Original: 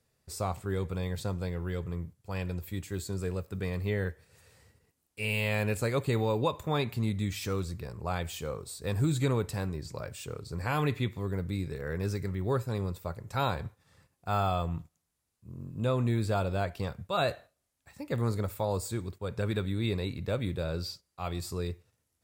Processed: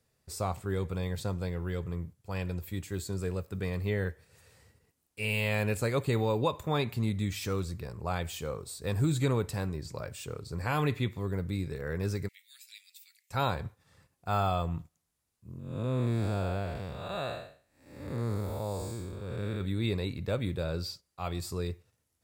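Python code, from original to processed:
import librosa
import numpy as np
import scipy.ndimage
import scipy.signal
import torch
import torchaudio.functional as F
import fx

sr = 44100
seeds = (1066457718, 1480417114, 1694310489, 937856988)

y = fx.steep_highpass(x, sr, hz=2200.0, slope=48, at=(12.27, 13.3), fade=0.02)
y = fx.spec_blur(y, sr, span_ms=270.0, at=(15.59, 19.61))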